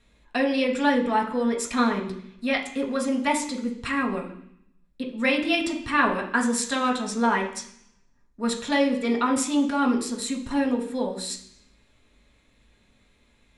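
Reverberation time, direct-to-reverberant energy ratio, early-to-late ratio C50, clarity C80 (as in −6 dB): 0.70 s, −1.0 dB, 9.0 dB, 12.0 dB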